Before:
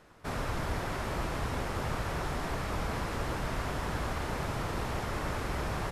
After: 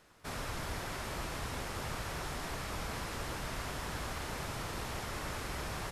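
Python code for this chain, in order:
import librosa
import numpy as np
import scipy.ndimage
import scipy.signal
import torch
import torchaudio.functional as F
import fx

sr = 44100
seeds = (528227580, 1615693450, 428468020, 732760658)

y = fx.high_shelf(x, sr, hz=2300.0, db=9.5)
y = F.gain(torch.from_numpy(y), -7.0).numpy()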